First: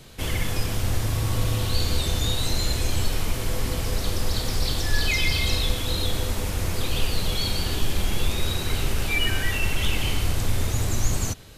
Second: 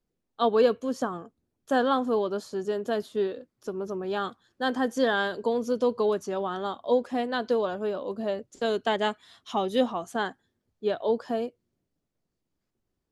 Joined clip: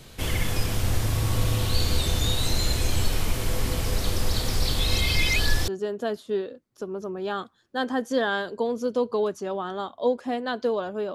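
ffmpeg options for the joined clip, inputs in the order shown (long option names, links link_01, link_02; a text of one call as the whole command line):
ffmpeg -i cue0.wav -i cue1.wav -filter_complex "[0:a]apad=whole_dur=11.14,atrim=end=11.14,asplit=2[link_01][link_02];[link_01]atrim=end=4.792[link_03];[link_02]atrim=start=4.788:end=5.682,asetpts=PTS-STARTPTS,areverse[link_04];[1:a]atrim=start=2.538:end=8[link_05];[link_03][link_04]acrossfade=duration=0.004:curve1=hsin:curve2=hsin[link_06];[link_06][link_05]acrossfade=duration=0.004:curve1=hsin:curve2=hsin" out.wav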